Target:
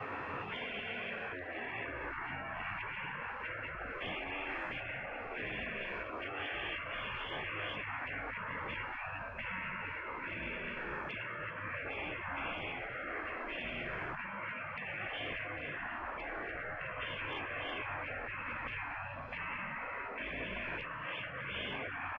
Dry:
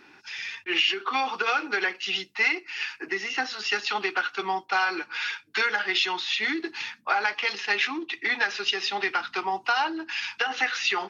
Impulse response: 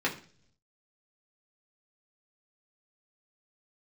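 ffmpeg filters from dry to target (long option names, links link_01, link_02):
-filter_complex "[0:a]asetrate=22050,aresample=44100,adynamicequalizer=threshold=0.00501:dfrequency=320:dqfactor=3.6:tfrequency=320:tqfactor=3.6:attack=5:release=100:ratio=0.375:range=3.5:mode=boostabove:tftype=bell[link_01];[1:a]atrim=start_sample=2205,afade=type=out:start_time=0.33:duration=0.01,atrim=end_sample=14994[link_02];[link_01][link_02]afir=irnorm=-1:irlink=0,acrossover=split=360|800[link_03][link_04][link_05];[link_03]acompressor=threshold=-32dB:ratio=4[link_06];[link_04]acompressor=threshold=-23dB:ratio=4[link_07];[link_05]acompressor=threshold=-28dB:ratio=4[link_08];[link_06][link_07][link_08]amix=inputs=3:normalize=0,asplit=5[link_09][link_10][link_11][link_12][link_13];[link_10]adelay=228,afreqshift=-54,volume=-16dB[link_14];[link_11]adelay=456,afreqshift=-108,volume=-22.2dB[link_15];[link_12]adelay=684,afreqshift=-162,volume=-28.4dB[link_16];[link_13]adelay=912,afreqshift=-216,volume=-34.6dB[link_17];[link_09][link_14][link_15][link_16][link_17]amix=inputs=5:normalize=0,acompressor=threshold=-32dB:ratio=5,highshelf=frequency=3300:gain=-10,afftfilt=real='re*lt(hypot(re,im),0.0158)':imag='im*lt(hypot(re,im),0.0158)':win_size=1024:overlap=0.75,volume=11dB"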